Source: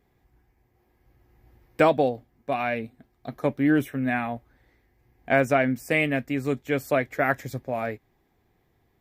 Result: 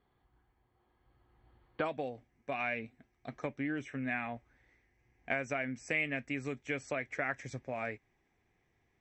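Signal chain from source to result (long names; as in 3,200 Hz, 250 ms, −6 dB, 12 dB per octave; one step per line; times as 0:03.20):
downward compressor 6 to 1, threshold −25 dBFS, peak gain reduction 10.5 dB
Chebyshev low-pass with heavy ripple 4,500 Hz, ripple 9 dB, from 0:01.84 8,000 Hz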